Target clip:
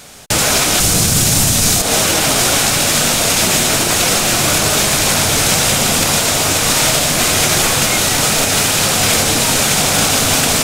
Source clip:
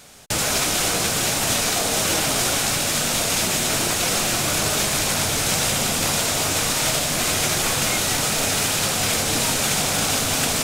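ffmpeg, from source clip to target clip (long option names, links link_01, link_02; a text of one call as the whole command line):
ffmpeg -i in.wav -filter_complex "[0:a]asettb=1/sr,asplit=3[link_01][link_02][link_03];[link_01]atrim=end=0.804[link_04];[link_02]atrim=start=0.8:end=1.82,asetpts=PTS-STARTPTS,afade=type=in:duration=0.004:curve=qsin,afade=type=out:start_time=1.016:duration=0.004:curve=qsin,bass=frequency=250:gain=14,treble=frequency=4000:gain=8[link_05];[link_03]atrim=start=1.816[link_06];[link_04][link_05]acrossfade=duration=0.004:curve1=hsin:curve2=qsin[link_07];[link_07][link_06]acrossfade=duration=0.004:curve1=qsin:curve2=hsin,alimiter=limit=-11dB:level=0:latency=1:release=113,volume=8.5dB" out.wav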